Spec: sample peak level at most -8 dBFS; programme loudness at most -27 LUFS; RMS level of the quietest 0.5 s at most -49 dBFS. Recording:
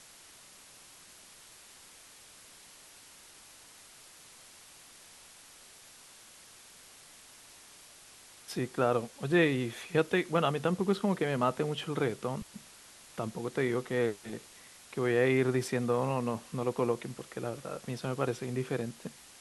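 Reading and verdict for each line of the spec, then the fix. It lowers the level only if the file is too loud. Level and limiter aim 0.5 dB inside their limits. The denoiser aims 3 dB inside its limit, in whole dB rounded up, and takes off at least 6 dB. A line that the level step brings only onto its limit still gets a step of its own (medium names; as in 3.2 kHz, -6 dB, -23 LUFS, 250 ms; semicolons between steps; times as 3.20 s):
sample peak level -13.0 dBFS: pass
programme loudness -32.0 LUFS: pass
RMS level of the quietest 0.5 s -55 dBFS: pass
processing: none needed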